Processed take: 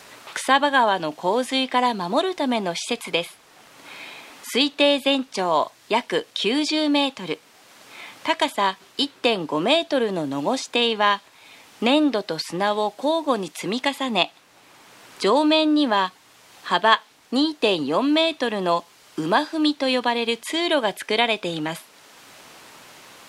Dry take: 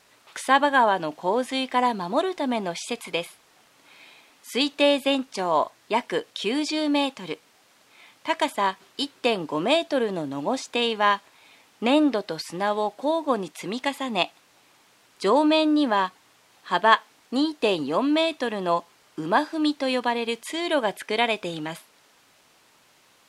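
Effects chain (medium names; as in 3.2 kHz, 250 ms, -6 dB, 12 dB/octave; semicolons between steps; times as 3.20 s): dynamic bell 3.7 kHz, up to +5 dB, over -39 dBFS, Q 1.6; three bands compressed up and down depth 40%; trim +2 dB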